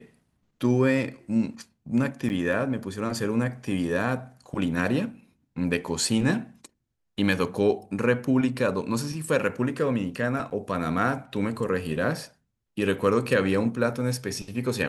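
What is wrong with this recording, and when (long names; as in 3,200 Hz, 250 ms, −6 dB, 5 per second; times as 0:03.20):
0:02.29–0:02.30: drop-out 9.6 ms
0:10.50–0:10.51: drop-out 9.3 ms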